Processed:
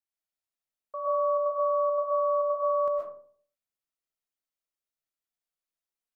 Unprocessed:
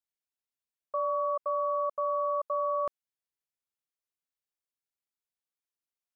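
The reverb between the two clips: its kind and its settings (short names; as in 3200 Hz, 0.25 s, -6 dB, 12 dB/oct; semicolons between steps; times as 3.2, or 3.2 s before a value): digital reverb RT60 0.53 s, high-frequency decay 0.4×, pre-delay 85 ms, DRR -3 dB; gain -5 dB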